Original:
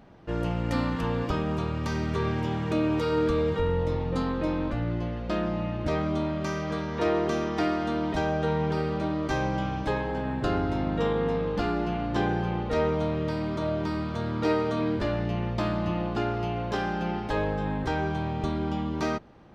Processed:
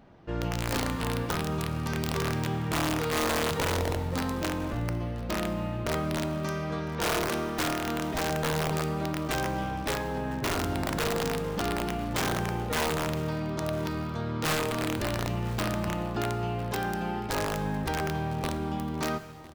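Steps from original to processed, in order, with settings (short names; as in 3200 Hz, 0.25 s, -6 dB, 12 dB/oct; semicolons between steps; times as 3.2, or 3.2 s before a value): wrapped overs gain 19 dB; echo 1.005 s -20 dB; non-linear reverb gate 0.47 s falling, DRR 10.5 dB; gain -2.5 dB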